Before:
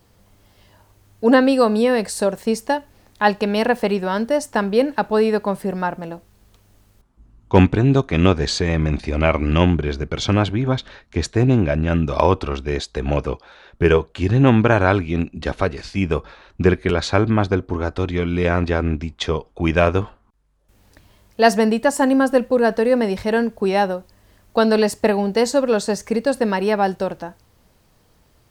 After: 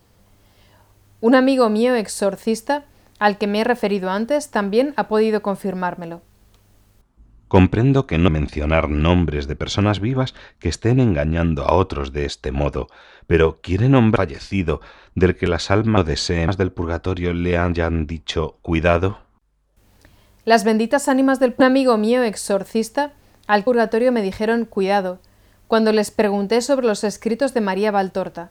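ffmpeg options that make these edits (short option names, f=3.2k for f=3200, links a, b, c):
-filter_complex "[0:a]asplit=7[a][b][c][d][e][f][g];[a]atrim=end=8.282[h];[b]atrim=start=8.788:end=14.672[i];[c]atrim=start=15.588:end=17.402[j];[d]atrim=start=8.278:end=8.792[k];[e]atrim=start=17.398:end=22.522[l];[f]atrim=start=1.318:end=3.392[m];[g]atrim=start=22.518[n];[h][i]acrossfade=d=0.004:c1=hsin:c2=hsin[o];[o][j]acrossfade=d=0.004:c1=hsin:c2=hsin[p];[p][k]acrossfade=d=0.004:c1=hsin:c2=hsin[q];[q][l]acrossfade=d=0.004:c1=hsin:c2=hsin[r];[r][m]acrossfade=d=0.004:c1=hsin:c2=hsin[s];[s][n]acrossfade=d=0.004:c1=hsin:c2=hsin"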